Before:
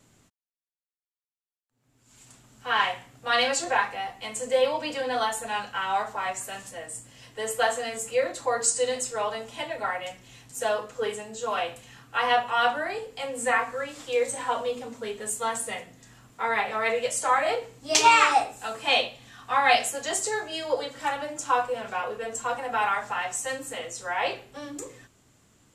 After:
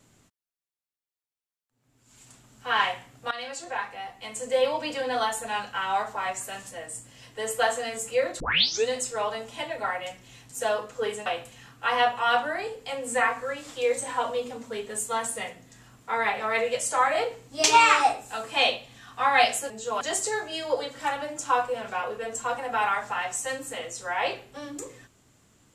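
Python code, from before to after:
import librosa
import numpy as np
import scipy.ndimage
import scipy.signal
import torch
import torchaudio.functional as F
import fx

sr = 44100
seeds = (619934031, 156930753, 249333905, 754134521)

y = fx.edit(x, sr, fx.fade_in_from(start_s=3.31, length_s=1.44, floor_db=-16.0),
    fx.tape_start(start_s=8.4, length_s=0.47),
    fx.move(start_s=11.26, length_s=0.31, to_s=20.01), tone=tone)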